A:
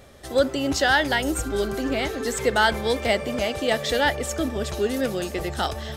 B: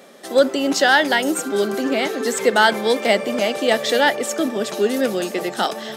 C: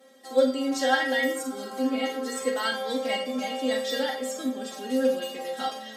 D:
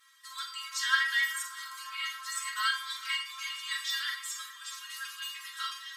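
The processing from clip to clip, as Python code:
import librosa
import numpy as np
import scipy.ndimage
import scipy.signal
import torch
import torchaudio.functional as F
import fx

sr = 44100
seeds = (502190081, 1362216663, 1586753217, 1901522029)

y1 = scipy.signal.sosfilt(scipy.signal.cheby1(4, 1.0, 190.0, 'highpass', fs=sr, output='sos'), x)
y1 = F.gain(torch.from_numpy(y1), 5.5).numpy()
y2 = fx.stiff_resonator(y1, sr, f0_hz=260.0, decay_s=0.23, stiffness=0.002)
y2 = fx.rev_schroeder(y2, sr, rt60_s=0.37, comb_ms=32, drr_db=4.0)
y2 = F.gain(torch.from_numpy(y2), 1.5).numpy()
y3 = fx.brickwall_highpass(y2, sr, low_hz=980.0)
y3 = y3 + 10.0 ** (-17.5 / 20.0) * np.pad(y3, (int(414 * sr / 1000.0), 0))[:len(y3)]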